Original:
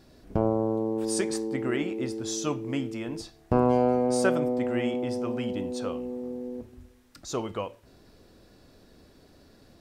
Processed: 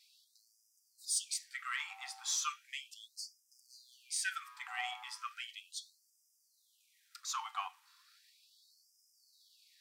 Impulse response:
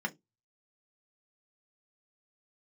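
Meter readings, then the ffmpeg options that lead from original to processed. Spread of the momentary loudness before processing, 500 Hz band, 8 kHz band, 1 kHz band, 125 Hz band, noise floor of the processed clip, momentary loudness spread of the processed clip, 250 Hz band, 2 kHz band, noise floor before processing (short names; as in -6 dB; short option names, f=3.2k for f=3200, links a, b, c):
13 LU, under -40 dB, -0.5 dB, -10.5 dB, under -40 dB, -75 dBFS, 14 LU, under -40 dB, -3.5 dB, -57 dBFS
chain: -filter_complex "[0:a]aeval=exprs='if(lt(val(0),0),0.708*val(0),val(0))':c=same,asplit=2[a][b];[1:a]atrim=start_sample=2205[c];[b][c]afir=irnorm=-1:irlink=0,volume=-10.5dB[d];[a][d]amix=inputs=2:normalize=0,afftfilt=real='re*gte(b*sr/1024,720*pow(4900/720,0.5+0.5*sin(2*PI*0.36*pts/sr)))':imag='im*gte(b*sr/1024,720*pow(4900/720,0.5+0.5*sin(2*PI*0.36*pts/sr)))':win_size=1024:overlap=0.75,volume=2dB"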